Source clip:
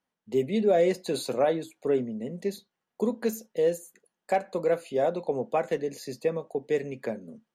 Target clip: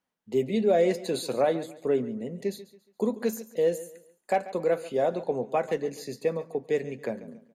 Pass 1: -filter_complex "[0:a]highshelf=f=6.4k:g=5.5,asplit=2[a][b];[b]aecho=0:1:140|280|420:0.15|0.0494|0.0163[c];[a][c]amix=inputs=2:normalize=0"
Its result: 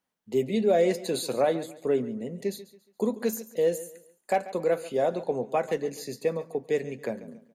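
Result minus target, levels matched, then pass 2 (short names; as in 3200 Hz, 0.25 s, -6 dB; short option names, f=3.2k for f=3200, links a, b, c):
8000 Hz band +3.0 dB
-filter_complex "[0:a]asplit=2[a][b];[b]aecho=0:1:140|280|420:0.15|0.0494|0.0163[c];[a][c]amix=inputs=2:normalize=0"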